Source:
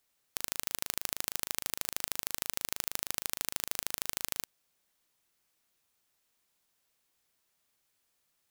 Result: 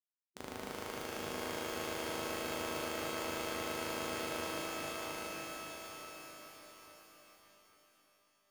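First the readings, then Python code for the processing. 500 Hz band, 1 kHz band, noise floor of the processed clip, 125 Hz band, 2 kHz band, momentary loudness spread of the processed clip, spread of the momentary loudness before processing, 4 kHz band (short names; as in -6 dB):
+11.5 dB, +6.5 dB, -75 dBFS, +4.0 dB, +2.0 dB, 16 LU, 2 LU, -3.0 dB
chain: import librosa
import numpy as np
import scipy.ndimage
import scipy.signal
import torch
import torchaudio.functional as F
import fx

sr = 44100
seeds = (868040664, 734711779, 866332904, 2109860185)

p1 = scipy.signal.sosfilt(scipy.signal.butter(2, 12000.0, 'lowpass', fs=sr, output='sos'), x)
p2 = fx.schmitt(p1, sr, flips_db=-24.5)
p3 = fx.spec_gate(p2, sr, threshold_db=-20, keep='weak')
p4 = p3 + fx.echo_feedback(p3, sr, ms=824, feedback_pct=33, wet_db=-3.5, dry=0)
p5 = fx.rev_shimmer(p4, sr, seeds[0], rt60_s=3.1, semitones=12, shimmer_db=-2, drr_db=-2.5)
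y = F.gain(torch.from_numpy(p5), 12.0).numpy()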